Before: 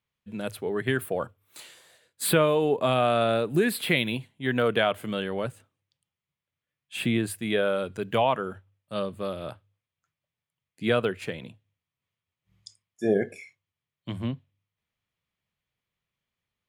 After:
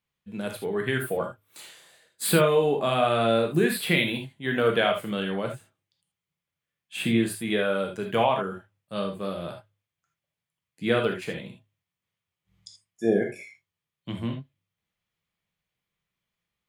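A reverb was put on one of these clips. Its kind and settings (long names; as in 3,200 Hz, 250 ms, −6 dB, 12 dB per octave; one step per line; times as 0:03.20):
reverb whose tail is shaped and stops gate 100 ms flat, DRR 2 dB
level −1 dB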